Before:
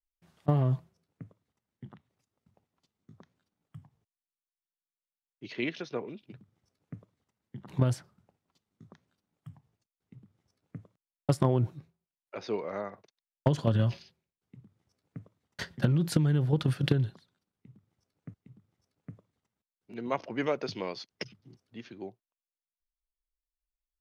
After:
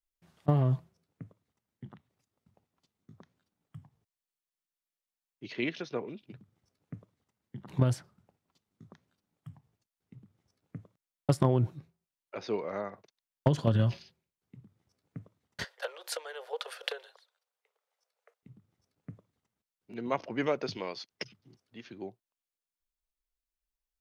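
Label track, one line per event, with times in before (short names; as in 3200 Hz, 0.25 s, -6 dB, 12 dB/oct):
15.640000	18.430000	steep high-pass 460 Hz 72 dB/oct
20.770000	21.890000	low shelf 370 Hz -6 dB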